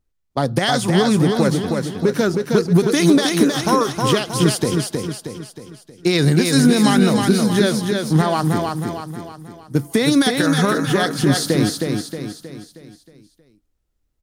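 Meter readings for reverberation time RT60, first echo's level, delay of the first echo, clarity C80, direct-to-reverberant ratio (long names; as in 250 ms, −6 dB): no reverb audible, −4.0 dB, 315 ms, no reverb audible, no reverb audible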